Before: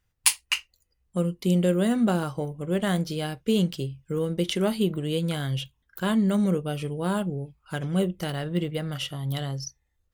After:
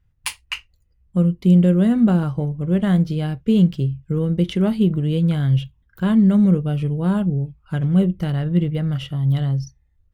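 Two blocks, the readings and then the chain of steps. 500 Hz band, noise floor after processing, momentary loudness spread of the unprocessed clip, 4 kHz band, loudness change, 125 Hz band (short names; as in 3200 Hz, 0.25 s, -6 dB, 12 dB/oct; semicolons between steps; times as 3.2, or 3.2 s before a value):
+1.5 dB, -62 dBFS, 10 LU, -3.0 dB, +8.0 dB, +10.5 dB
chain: tone controls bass +13 dB, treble -10 dB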